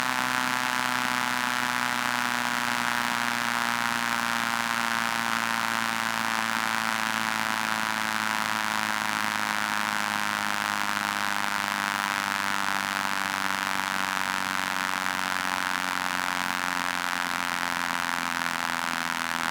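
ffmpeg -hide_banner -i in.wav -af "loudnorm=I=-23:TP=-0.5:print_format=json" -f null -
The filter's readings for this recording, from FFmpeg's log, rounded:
"input_i" : "-26.5",
"input_tp" : "-6.4",
"input_lra" : "1.6",
"input_thresh" : "-36.5",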